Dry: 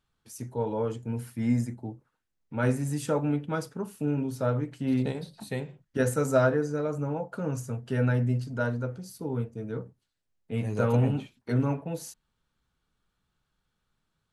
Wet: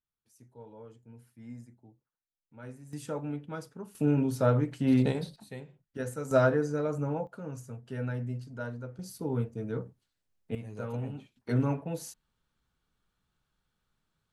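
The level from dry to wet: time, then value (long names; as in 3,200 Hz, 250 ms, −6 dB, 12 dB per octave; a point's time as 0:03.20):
−19.5 dB
from 0:02.93 −8.5 dB
from 0:03.95 +2.5 dB
from 0:05.36 −10 dB
from 0:06.31 −1 dB
from 0:07.27 −9 dB
from 0:08.99 0 dB
from 0:10.55 −12 dB
from 0:11.36 −1.5 dB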